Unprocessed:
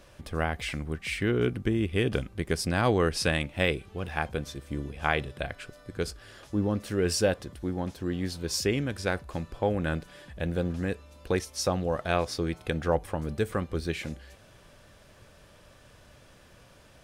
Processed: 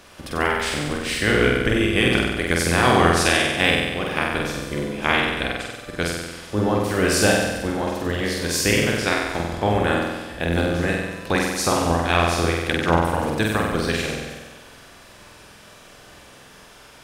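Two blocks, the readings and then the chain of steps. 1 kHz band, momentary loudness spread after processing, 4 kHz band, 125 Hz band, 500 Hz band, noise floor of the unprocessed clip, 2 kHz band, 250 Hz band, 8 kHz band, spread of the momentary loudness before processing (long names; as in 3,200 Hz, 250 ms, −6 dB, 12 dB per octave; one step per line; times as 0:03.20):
+11.5 dB, 9 LU, +11.5 dB, +6.0 dB, +7.0 dB, −55 dBFS, +12.5 dB, +8.0 dB, +11.0 dB, 10 LU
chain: ceiling on every frequency bin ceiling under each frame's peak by 14 dB
flutter between parallel walls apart 8.1 metres, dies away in 1.2 s
level +5 dB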